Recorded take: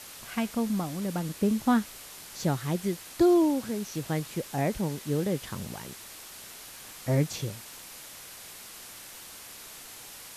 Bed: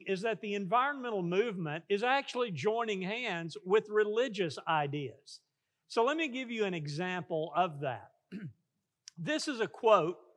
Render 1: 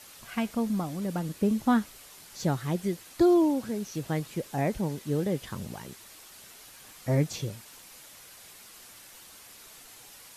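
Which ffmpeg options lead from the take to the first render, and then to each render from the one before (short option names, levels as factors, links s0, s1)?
-af "afftdn=nr=6:nf=-46"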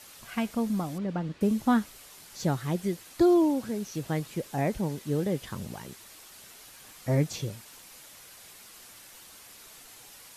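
-filter_complex "[0:a]asettb=1/sr,asplit=3[s0][s1][s2];[s0]atrim=end=0.984[s3];[s1]atrim=start=0.98:end=1.41,asetpts=PTS-STARTPTS,afade=t=in:d=0.004:c=qsin,afade=t=out:st=0.426:d=0.004:c=qsin,lowpass=3300[s4];[s2]atrim=start=1.406[s5];[s3][s4]acrossfade=d=0.004:c1=hsin:c2=qsin[s6];[s6][s5]acrossfade=d=0.004:c1=qsin:c2=hsin"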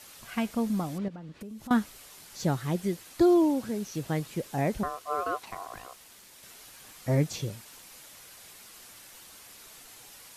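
-filter_complex "[0:a]asettb=1/sr,asplit=3[s0][s1][s2];[s0]atrim=end=1.084[s3];[s1]atrim=start=1.08:end=1.71,asetpts=PTS-STARTPTS,afade=t=in:d=0.004:c=qsin,afade=t=out:st=0.626:d=0.004:c=qsin,acompressor=threshold=0.01:ratio=6:attack=3.2:release=140:knee=1:detection=peak[s4];[s2]atrim=start=1.706[s5];[s3][s4]acrossfade=d=0.004:c1=hsin:c2=qsin[s6];[s6][s5]acrossfade=d=0.004:c1=qsin:c2=hsin,asettb=1/sr,asplit=3[s7][s8][s9];[s7]atrim=end=4.834[s10];[s8]atrim=start=4.83:end=6.43,asetpts=PTS-STARTPTS,afade=t=in:d=0.004:c=qsin,afade=t=out:st=1.596:d=0.004:c=qsin,aeval=exprs='val(0)*sin(2*PI*890*n/s)':c=same[s11];[s9]atrim=start=6.426[s12];[s10][s11]acrossfade=d=0.004:c1=hsin:c2=qsin[s13];[s13][s12]acrossfade=d=0.004:c1=qsin:c2=hsin"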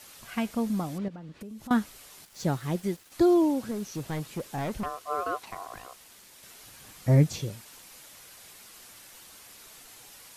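-filter_complex "[0:a]asettb=1/sr,asplit=3[s0][s1][s2];[s0]atrim=end=2.254[s3];[s1]atrim=start=2.25:end=3.12,asetpts=PTS-STARTPTS,afade=t=in:d=0.004:c=qsin,afade=t=out:st=0.866:d=0.004:c=qsin,aeval=exprs='sgn(val(0))*max(abs(val(0))-0.00266,0)':c=same[s4];[s2]atrim=start=3.116[s5];[s3][s4]acrossfade=d=0.004:c1=hsin:c2=qsin[s6];[s6][s5]acrossfade=d=0.004:c1=qsin:c2=hsin,asettb=1/sr,asplit=3[s7][s8][s9];[s7]atrim=end=3.714[s10];[s8]atrim=start=3.71:end=4.86,asetpts=PTS-STARTPTS,afade=t=in:d=0.004:c=qsin,afade=t=out:st=1.146:d=0.004:c=qsin,volume=25.1,asoftclip=hard,volume=0.0398[s11];[s9]atrim=start=4.856[s12];[s10][s11]acrossfade=d=0.004:c1=hsin:c2=qsin[s13];[s13][s12]acrossfade=d=0.004:c1=qsin:c2=hsin,asettb=1/sr,asplit=3[s14][s15][s16];[s14]atrim=end=6.634[s17];[s15]atrim=start=6.63:end=7.4,asetpts=PTS-STARTPTS,afade=t=in:d=0.004:c=qsin,afade=t=out:st=0.766:d=0.004:c=qsin,equalizer=f=96:t=o:w=2.6:g=7.5[s18];[s16]atrim=start=7.396[s19];[s17][s18]acrossfade=d=0.004:c1=hsin:c2=qsin[s20];[s20][s19]acrossfade=d=0.004:c1=qsin:c2=hsin"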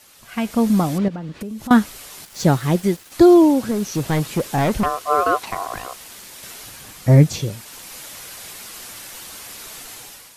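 -af "dynaudnorm=f=140:g=7:m=4.73"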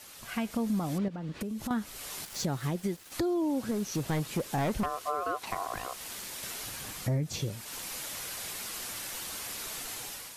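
-af "alimiter=limit=0.266:level=0:latency=1:release=132,acompressor=threshold=0.0141:ratio=2"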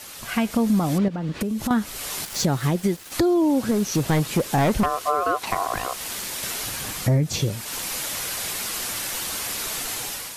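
-af "volume=3.16"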